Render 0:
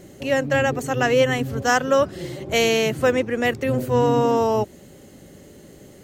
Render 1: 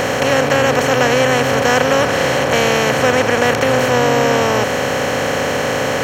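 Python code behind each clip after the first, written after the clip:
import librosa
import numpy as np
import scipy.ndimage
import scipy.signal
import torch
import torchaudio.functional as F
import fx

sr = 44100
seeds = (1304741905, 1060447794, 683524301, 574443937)

y = fx.bin_compress(x, sr, power=0.2)
y = y * 10.0 ** (-1.5 / 20.0)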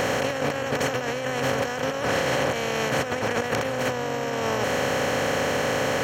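y = fx.over_compress(x, sr, threshold_db=-16.0, ratio=-0.5)
y = y * 10.0 ** (-8.5 / 20.0)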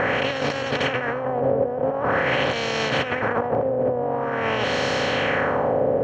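y = fx.filter_lfo_lowpass(x, sr, shape='sine', hz=0.46, low_hz=550.0, high_hz=4600.0, q=1.9)
y = y * 10.0 ** (1.0 / 20.0)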